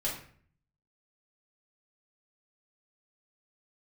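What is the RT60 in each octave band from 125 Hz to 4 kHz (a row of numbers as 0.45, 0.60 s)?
0.85, 0.70, 0.55, 0.50, 0.50, 0.40 s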